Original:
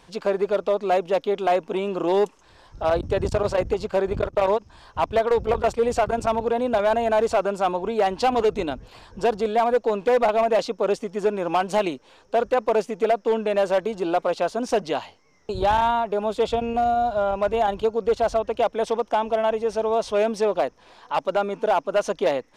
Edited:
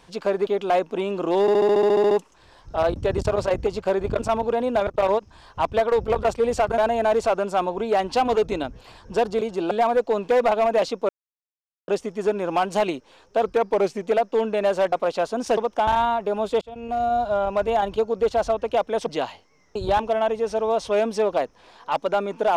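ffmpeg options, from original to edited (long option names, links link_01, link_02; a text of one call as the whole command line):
ffmpeg -i in.wav -filter_complex "[0:a]asplit=26[link_01][link_02][link_03][link_04][link_05][link_06][link_07][link_08][link_09][link_10][link_11][link_12][link_13][link_14][link_15][link_16][link_17][link_18][link_19][link_20][link_21][link_22][link_23][link_24][link_25][link_26];[link_01]atrim=end=0.472[link_27];[link_02]atrim=start=1.238:end=2.252[link_28];[link_03]atrim=start=2.178:end=2.252[link_29];[link_04]atrim=start=2.178:end=2.252[link_30];[link_05]atrim=start=2.178:end=2.252[link_31];[link_06]atrim=start=2.178:end=2.252[link_32];[link_07]atrim=start=2.178:end=2.252[link_33];[link_08]atrim=start=2.178:end=2.252[link_34];[link_09]atrim=start=2.178:end=2.252[link_35];[link_10]atrim=start=2.178:end=2.252[link_36];[link_11]atrim=start=2.178:end=2.252[link_37];[link_12]atrim=start=2.178:end=4.262[link_38];[link_13]atrim=start=6.168:end=6.852[link_39];[link_14]atrim=start=4.258:end=6.172[link_40];[link_15]atrim=start=6.848:end=9.482[link_41];[link_16]atrim=start=13.848:end=14.152[link_42];[link_17]atrim=start=9.478:end=10.86,asetpts=PTS-STARTPTS,afade=type=out:start_time=1.378:duration=0.004:curve=hsin,apad=pad_dur=0.79[link_43];[link_18]atrim=start=10.86:end=12.414,asetpts=PTS-STARTPTS,afade=type=in:duration=0.004:curve=hsin[link_44];[link_19]atrim=start=12.41:end=12.95,asetpts=PTS-STARTPTS,asetrate=40131,aresample=44100,atrim=end_sample=26169,asetpts=PTS-STARTPTS[link_45];[link_20]atrim=start=12.946:end=13.852[link_46];[link_21]atrim=start=14.148:end=14.802[link_47];[link_22]atrim=start=18.918:end=19.222[link_48];[link_23]atrim=start=15.728:end=16.47,asetpts=PTS-STARTPTS,afade=type=out:start_time=0.738:duration=0.004:curve=hsin[link_49];[link_24]atrim=start=16.47:end=18.922,asetpts=PTS-STARTPTS,afade=type=in:duration=0.52[link_50];[link_25]atrim=start=14.798:end=15.732[link_51];[link_26]atrim=start=19.218[link_52];[link_27][link_28]acrossfade=duration=0.004:curve1=hsin:curve2=hsin[link_53];[link_53][link_29]acrossfade=duration=0.004:curve1=hsin:curve2=hsin[link_54];[link_54][link_30]acrossfade=duration=0.004:curve1=hsin:curve2=hsin[link_55];[link_55][link_31]acrossfade=duration=0.004:curve1=hsin:curve2=hsin[link_56];[link_56][link_32]acrossfade=duration=0.004:curve1=hsin:curve2=hsin[link_57];[link_57][link_33]acrossfade=duration=0.004:curve1=hsin:curve2=hsin[link_58];[link_58][link_34]acrossfade=duration=0.004:curve1=hsin:curve2=hsin[link_59];[link_59][link_35]acrossfade=duration=0.004:curve1=hsin:curve2=hsin[link_60];[link_60][link_36]acrossfade=duration=0.004:curve1=hsin:curve2=hsin[link_61];[link_61][link_37]acrossfade=duration=0.004:curve1=hsin:curve2=hsin[link_62];[link_62][link_38]acrossfade=duration=0.004:curve1=hsin:curve2=hsin[link_63];[link_63][link_39]acrossfade=duration=0.004:curve1=hsin:curve2=hsin[link_64];[link_64][link_40]acrossfade=duration=0.004:curve1=hsin:curve2=hsin[link_65];[link_65][link_41]acrossfade=duration=0.004:curve1=hsin:curve2=hsin[link_66];[link_66][link_42]acrossfade=duration=0.004:curve1=hsin:curve2=hsin[link_67];[link_43][link_44]concat=n=2:v=0:a=1[link_68];[link_67][link_68]acrossfade=duration=0.004:curve1=hsin:curve2=hsin[link_69];[link_69][link_45]acrossfade=duration=0.004:curve1=hsin:curve2=hsin[link_70];[link_70][link_46]acrossfade=duration=0.004:curve1=hsin:curve2=hsin[link_71];[link_71][link_47]acrossfade=duration=0.004:curve1=hsin:curve2=hsin[link_72];[link_72][link_48]acrossfade=duration=0.004:curve1=hsin:curve2=hsin[link_73];[link_49][link_50]concat=n=2:v=0:a=1[link_74];[link_73][link_74]acrossfade=duration=0.004:curve1=hsin:curve2=hsin[link_75];[link_75][link_51]acrossfade=duration=0.004:curve1=hsin:curve2=hsin[link_76];[link_76][link_52]acrossfade=duration=0.004:curve1=hsin:curve2=hsin" out.wav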